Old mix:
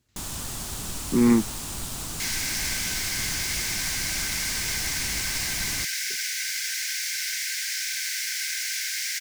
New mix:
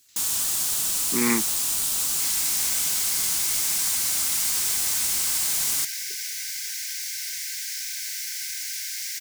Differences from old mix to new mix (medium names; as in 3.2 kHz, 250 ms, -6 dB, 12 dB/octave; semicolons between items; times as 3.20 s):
speech: add treble shelf 2.1 kHz +10 dB; second sound -11.5 dB; master: add tilt EQ +3.5 dB/octave